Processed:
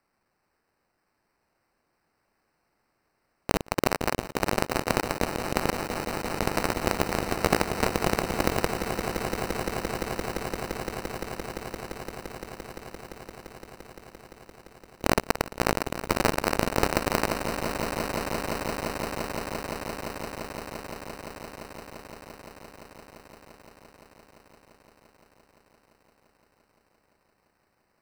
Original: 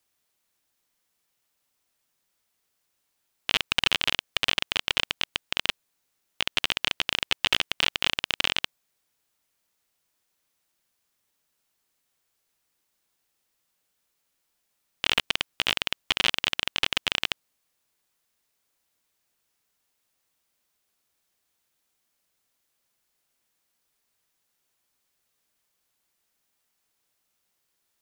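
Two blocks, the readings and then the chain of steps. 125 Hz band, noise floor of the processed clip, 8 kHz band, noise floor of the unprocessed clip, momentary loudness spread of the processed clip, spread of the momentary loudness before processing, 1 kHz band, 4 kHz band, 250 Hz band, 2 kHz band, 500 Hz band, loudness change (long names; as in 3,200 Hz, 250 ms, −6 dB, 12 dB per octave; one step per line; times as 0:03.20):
+14.0 dB, −75 dBFS, +4.5 dB, −77 dBFS, 18 LU, 6 LU, +9.0 dB, −11.0 dB, +15.5 dB, −2.5 dB, +14.5 dB, −3.5 dB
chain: decimation without filtering 13×
echo that builds up and dies away 172 ms, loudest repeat 8, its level −13 dB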